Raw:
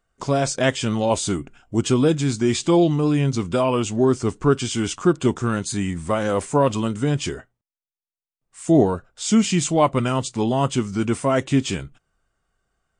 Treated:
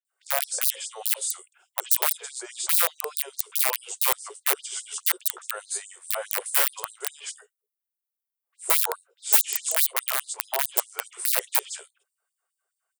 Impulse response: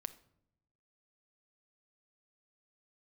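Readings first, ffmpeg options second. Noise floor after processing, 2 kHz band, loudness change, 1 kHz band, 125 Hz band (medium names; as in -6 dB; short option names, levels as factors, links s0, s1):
under -85 dBFS, -1.5 dB, -3.0 dB, -8.5 dB, under -40 dB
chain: -filter_complex "[0:a]bandreject=f=60:t=h:w=6,bandreject=f=120:t=h:w=6,bandreject=f=180:t=h:w=6,bandreject=f=240:t=h:w=6,bandreject=f=300:t=h:w=6,bandreject=f=360:t=h:w=6,bandreject=f=420:t=h:w=6,bandreject=f=480:t=h:w=6,bandreject=f=540:t=h:w=6,acrossover=split=160|3100[s0][s1][s2];[s2]adelay=50[s3];[s0]adelay=210[s4];[s4][s1][s3]amix=inputs=3:normalize=0,adynamicequalizer=threshold=0.00501:dfrequency=2400:dqfactor=2.9:tfrequency=2400:tqfactor=2.9:attack=5:release=100:ratio=0.375:range=2:mode=cutabove:tftype=bell,aeval=exprs='(mod(4.22*val(0)+1,2)-1)/4.22':c=same,aexciter=amount=4.9:drive=3.6:freq=8500,afftfilt=real='re*gte(b*sr/1024,360*pow(3900/360,0.5+0.5*sin(2*PI*4.8*pts/sr)))':imag='im*gte(b*sr/1024,360*pow(3900/360,0.5+0.5*sin(2*PI*4.8*pts/sr)))':win_size=1024:overlap=0.75,volume=0.531"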